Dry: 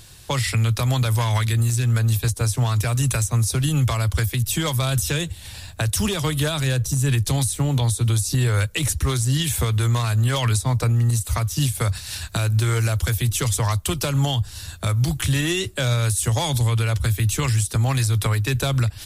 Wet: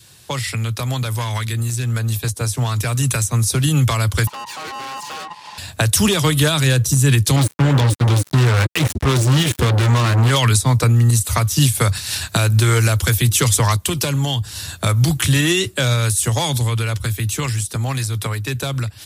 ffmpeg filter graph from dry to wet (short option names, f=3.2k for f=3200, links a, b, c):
-filter_complex "[0:a]asettb=1/sr,asplit=3[a][b][c];[a]atrim=end=4.274[d];[b]atrim=start=4.27:end=5.58,asetpts=PTS-STARTPTS,afade=t=in:d=0.004:c=qsin,afade=t=out:st=1.306:d=0.004:c=qsin,lowpass=4.6k,aeval=exprs='val(0)*sin(2*PI*940*n/s)':c=same,aeval=exprs='(tanh(50.1*val(0)+0.5)-tanh(0.5))/50.1':c=same[e];[c]atrim=start=5.576[f];[d][e]acrossfade=d=0.004:c1=hsin:c2=qsin[g];[g][f]acrossfade=d=0.004:c1=qsin:c2=hsin,asettb=1/sr,asplit=3[h][i][j];[h]atrim=end=7.364[k];[i]atrim=start=7.36:end=10.31,asetpts=PTS-STARTPTS,afade=t=in:d=0.004:c=qsin,afade=t=out:st=2.946:d=0.004:c=qsin,lowpass=f=2.2k:p=1,acrusher=bits=3:mix=0:aa=0.5[l];[j]atrim=start=10.306[m];[k][l]acrossfade=d=0.004:c1=hsin:c2=qsin[n];[n][m]acrossfade=d=0.004:c1=qsin:c2=hsin,asettb=1/sr,asplit=3[o][p][q];[o]atrim=end=13.764[r];[p]atrim=start=13.76:end=14.44,asetpts=PTS-STARTPTS,afade=t=in:d=0.004:c=qsin,afade=t=out:st=0.676:d=0.004:c=qsin,bandreject=f=1.3k:w=8.2,acompressor=threshold=-23dB:ratio=3:attack=3.2:release=140:knee=1:detection=peak[s];[q]atrim=start=14.436[t];[r][s]acrossfade=d=0.004:c1=hsin:c2=qsin[u];[u][t]acrossfade=d=0.004:c1=qsin:c2=hsin,dynaudnorm=f=390:g=17:m=9dB,highpass=110,adynamicequalizer=threshold=0.0126:dfrequency=680:dqfactor=2:tfrequency=680:tqfactor=2:attack=5:release=100:ratio=0.375:range=2:mode=cutabove:tftype=bell"